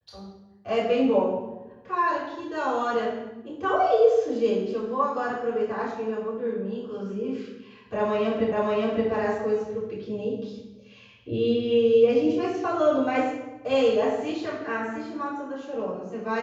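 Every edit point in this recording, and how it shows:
8.52 repeat of the last 0.57 s

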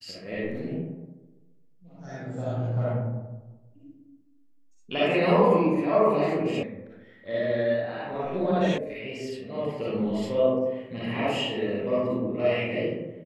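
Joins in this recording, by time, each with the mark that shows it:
6.63 sound cut off
8.78 sound cut off

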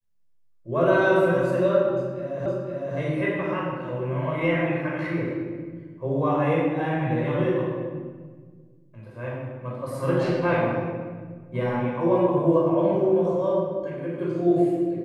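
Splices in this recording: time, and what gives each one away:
2.46 repeat of the last 0.51 s

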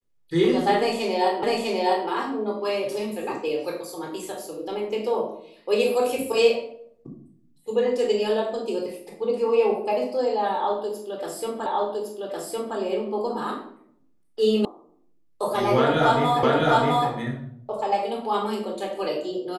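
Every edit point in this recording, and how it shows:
1.43 repeat of the last 0.65 s
11.66 repeat of the last 1.11 s
14.65 sound cut off
16.43 repeat of the last 0.66 s

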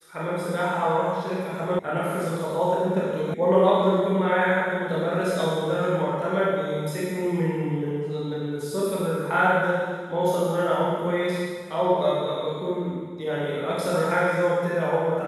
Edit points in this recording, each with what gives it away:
1.79 sound cut off
3.34 sound cut off

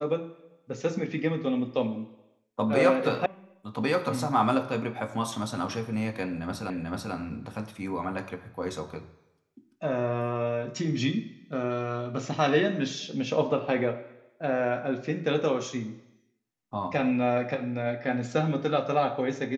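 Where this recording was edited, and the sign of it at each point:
3.26 sound cut off
6.7 repeat of the last 0.44 s

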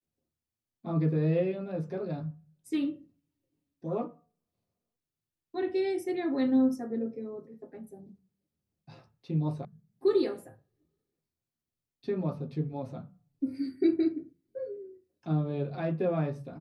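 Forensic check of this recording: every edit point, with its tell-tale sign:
9.65 sound cut off

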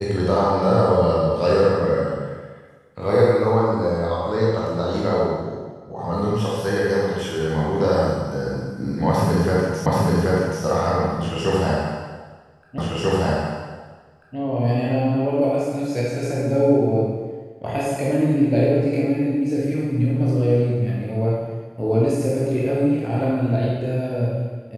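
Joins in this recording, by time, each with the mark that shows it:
9.86 repeat of the last 0.78 s
12.78 repeat of the last 1.59 s

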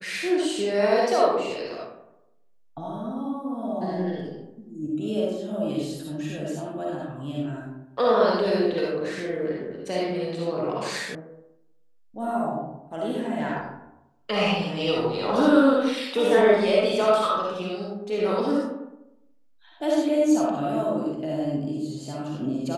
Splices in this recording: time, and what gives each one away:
11.15 sound cut off

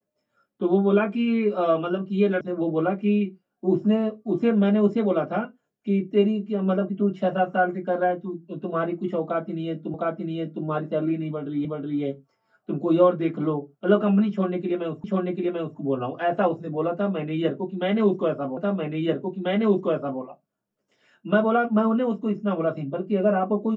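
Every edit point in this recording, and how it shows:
2.41 sound cut off
9.94 repeat of the last 0.71 s
11.65 repeat of the last 0.37 s
15.04 repeat of the last 0.74 s
18.57 repeat of the last 1.64 s

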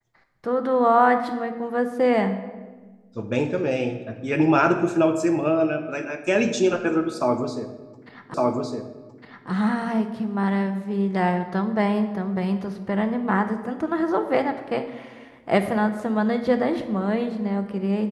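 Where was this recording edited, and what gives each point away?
8.34 repeat of the last 1.16 s

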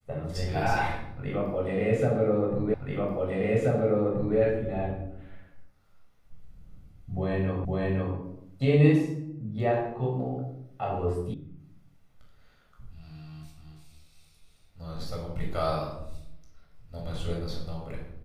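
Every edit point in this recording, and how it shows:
2.74 repeat of the last 1.63 s
7.65 repeat of the last 0.51 s
11.34 sound cut off

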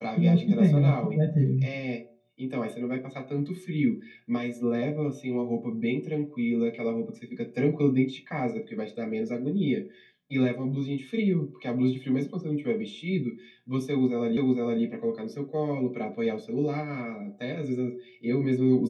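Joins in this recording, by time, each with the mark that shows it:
14.37 repeat of the last 0.46 s

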